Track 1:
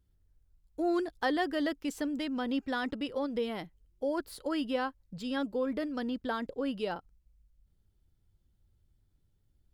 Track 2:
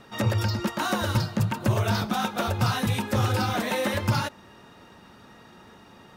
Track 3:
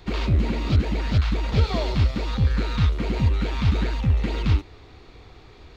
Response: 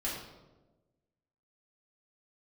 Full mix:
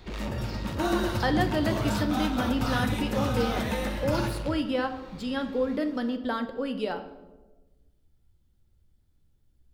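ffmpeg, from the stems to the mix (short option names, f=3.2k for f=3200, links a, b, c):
-filter_complex "[0:a]volume=1dB,asplit=3[a][b][c];[b]volume=-8.5dB[d];[1:a]volume=-10dB,asplit=2[e][f];[f]volume=-3dB[g];[2:a]alimiter=limit=-18dB:level=0:latency=1:release=464,asoftclip=type=hard:threshold=-30.5dB,volume=-2.5dB[h];[c]apad=whole_len=271666[i];[e][i]sidechaingate=range=-33dB:threshold=-60dB:ratio=16:detection=peak[j];[3:a]atrim=start_sample=2205[k];[d][g]amix=inputs=2:normalize=0[l];[l][k]afir=irnorm=-1:irlink=0[m];[a][j][h][m]amix=inputs=4:normalize=0"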